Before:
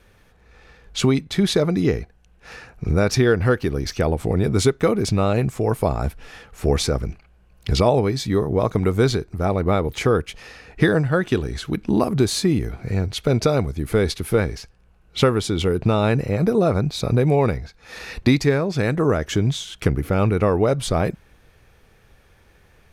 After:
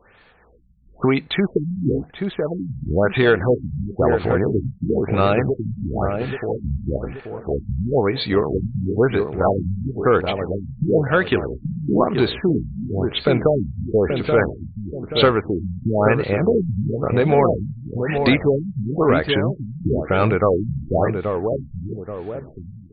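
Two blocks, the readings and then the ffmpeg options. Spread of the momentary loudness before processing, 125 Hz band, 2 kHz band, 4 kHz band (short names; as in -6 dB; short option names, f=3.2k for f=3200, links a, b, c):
8 LU, -1.5 dB, +2.5 dB, -1.0 dB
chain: -filter_complex "[0:a]asplit=2[a][b];[b]highpass=f=720:p=1,volume=13dB,asoftclip=type=tanh:threshold=-3.5dB[c];[a][c]amix=inputs=2:normalize=0,lowpass=f=6.6k:p=1,volume=-6dB,asplit=2[d][e];[e]adelay=830,lowpass=f=1k:p=1,volume=-5dB,asplit=2[f][g];[g]adelay=830,lowpass=f=1k:p=1,volume=0.46,asplit=2[h][i];[i]adelay=830,lowpass=f=1k:p=1,volume=0.46,asplit=2[j][k];[k]adelay=830,lowpass=f=1k:p=1,volume=0.46,asplit=2[l][m];[m]adelay=830,lowpass=f=1k:p=1,volume=0.46,asplit=2[n][o];[o]adelay=830,lowpass=f=1k:p=1,volume=0.46[p];[d][f][h][j][l][n][p]amix=inputs=7:normalize=0,afftfilt=real='re*lt(b*sr/1024,210*pow(4700/210,0.5+0.5*sin(2*PI*1*pts/sr)))':imag='im*lt(b*sr/1024,210*pow(4700/210,0.5+0.5*sin(2*PI*1*pts/sr)))':win_size=1024:overlap=0.75"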